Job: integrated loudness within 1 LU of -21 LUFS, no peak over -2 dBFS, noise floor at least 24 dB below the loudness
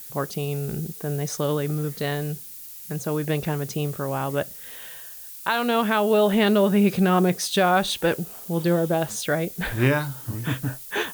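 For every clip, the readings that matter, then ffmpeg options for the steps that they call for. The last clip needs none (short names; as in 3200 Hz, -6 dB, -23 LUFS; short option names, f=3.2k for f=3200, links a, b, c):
noise floor -40 dBFS; noise floor target -48 dBFS; loudness -24.0 LUFS; peak -9.5 dBFS; loudness target -21.0 LUFS
-> -af "afftdn=nr=8:nf=-40"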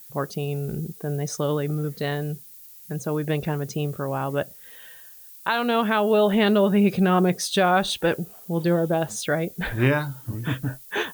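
noise floor -46 dBFS; noise floor target -48 dBFS
-> -af "afftdn=nr=6:nf=-46"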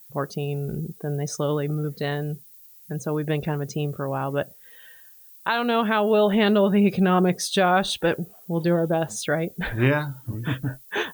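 noise floor -49 dBFS; loudness -24.0 LUFS; peak -9.5 dBFS; loudness target -21.0 LUFS
-> -af "volume=3dB"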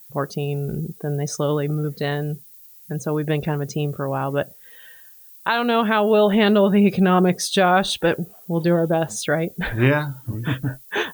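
loudness -21.0 LUFS; peak -6.5 dBFS; noise floor -46 dBFS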